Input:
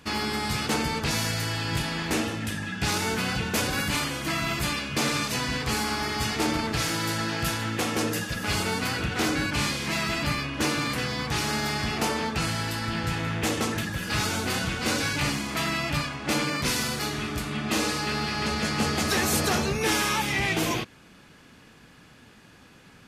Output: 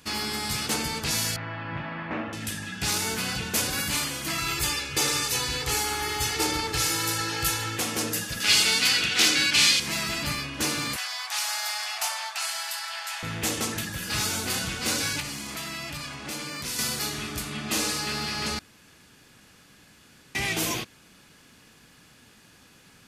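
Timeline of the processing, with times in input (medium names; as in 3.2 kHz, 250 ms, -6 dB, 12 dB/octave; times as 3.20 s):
1.36–2.33 s: cabinet simulation 100–2200 Hz, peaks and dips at 420 Hz -8 dB, 600 Hz +6 dB, 1.1 kHz +5 dB
4.38–7.78 s: comb 2.3 ms, depth 69%
8.40–9.80 s: frequency weighting D
10.96–13.23 s: steep high-pass 630 Hz 72 dB/octave
15.20–16.79 s: compression 4:1, threshold -30 dBFS
18.59–20.35 s: room tone
whole clip: treble shelf 4 kHz +11.5 dB; trim -4.5 dB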